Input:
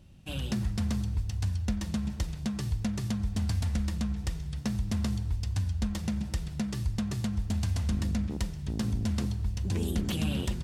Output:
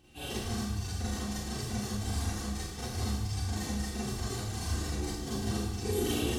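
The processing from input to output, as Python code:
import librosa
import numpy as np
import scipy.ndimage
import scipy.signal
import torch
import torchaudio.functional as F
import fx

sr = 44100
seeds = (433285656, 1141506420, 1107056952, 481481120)

y = fx.dynamic_eq(x, sr, hz=2500.0, q=1.0, threshold_db=-55.0, ratio=4.0, max_db=-6)
y = fx.highpass(y, sr, hz=260.0, slope=6)
y = y + 0.68 * np.pad(y, (int(2.6 * sr / 1000.0), 0))[:len(y)]
y = fx.stretch_vocoder_free(y, sr, factor=0.6)
y = fx.rev_schroeder(y, sr, rt60_s=0.88, comb_ms=30, drr_db=-8.0)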